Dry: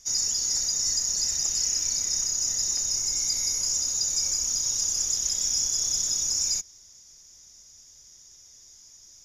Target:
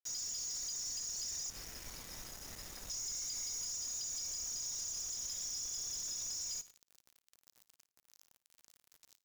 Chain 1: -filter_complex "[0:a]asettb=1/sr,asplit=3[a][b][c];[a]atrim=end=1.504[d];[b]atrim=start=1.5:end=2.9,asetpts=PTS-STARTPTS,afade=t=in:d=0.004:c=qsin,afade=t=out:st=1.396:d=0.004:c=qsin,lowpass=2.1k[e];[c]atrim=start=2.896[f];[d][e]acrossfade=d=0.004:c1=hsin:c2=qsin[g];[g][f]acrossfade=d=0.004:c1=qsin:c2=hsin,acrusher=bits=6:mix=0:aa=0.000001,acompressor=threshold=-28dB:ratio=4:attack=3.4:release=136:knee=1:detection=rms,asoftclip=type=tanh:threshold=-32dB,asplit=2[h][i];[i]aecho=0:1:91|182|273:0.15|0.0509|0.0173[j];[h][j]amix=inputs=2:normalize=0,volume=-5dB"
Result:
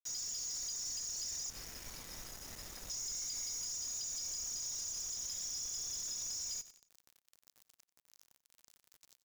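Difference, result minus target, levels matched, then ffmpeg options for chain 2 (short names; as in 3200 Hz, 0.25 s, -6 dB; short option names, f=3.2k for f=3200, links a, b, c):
echo 36 ms late
-filter_complex "[0:a]asettb=1/sr,asplit=3[a][b][c];[a]atrim=end=1.504[d];[b]atrim=start=1.5:end=2.9,asetpts=PTS-STARTPTS,afade=t=in:d=0.004:c=qsin,afade=t=out:st=1.396:d=0.004:c=qsin,lowpass=2.1k[e];[c]atrim=start=2.896[f];[d][e]acrossfade=d=0.004:c1=hsin:c2=qsin[g];[g][f]acrossfade=d=0.004:c1=qsin:c2=hsin,acrusher=bits=6:mix=0:aa=0.000001,acompressor=threshold=-28dB:ratio=4:attack=3.4:release=136:knee=1:detection=rms,asoftclip=type=tanh:threshold=-32dB,asplit=2[h][i];[i]aecho=0:1:55|110|165:0.15|0.0509|0.0173[j];[h][j]amix=inputs=2:normalize=0,volume=-5dB"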